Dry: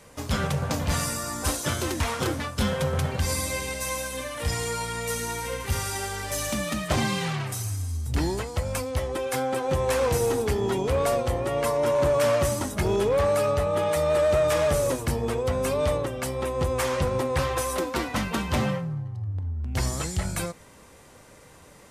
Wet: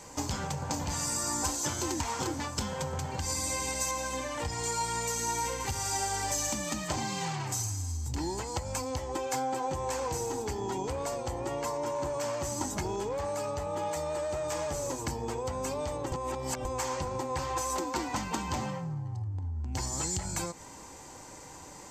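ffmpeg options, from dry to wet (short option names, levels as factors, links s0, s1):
-filter_complex "[0:a]asettb=1/sr,asplit=3[s0][s1][s2];[s0]atrim=end=3.914[s3];[s1]atrim=start=3.91:end=4.64,asetpts=PTS-STARTPTS,afade=t=in:d=0.004:c=qsin,afade=t=out:st=0.726:d=0.004:c=qsin,highshelf=f=5500:g=-9.5[s4];[s2]atrim=start=4.636[s5];[s3][s4]acrossfade=d=0.004:c1=hsin:c2=qsin[s6];[s6][s5]acrossfade=d=0.004:c1=qsin:c2=hsin,asplit=3[s7][s8][s9];[s7]atrim=end=16.122[s10];[s8]atrim=start=16.118:end=16.652,asetpts=PTS-STARTPTS,areverse[s11];[s9]atrim=start=16.648[s12];[s10][s11]acrossfade=d=0.004:c1=hsin:c2=hsin[s13];[s13][s12]acrossfade=d=0.004:c1=hsin:c2=hsin,acompressor=threshold=0.0251:ratio=10,superequalizer=6b=1.78:9b=2.51:14b=2:15b=3.16:16b=0.501"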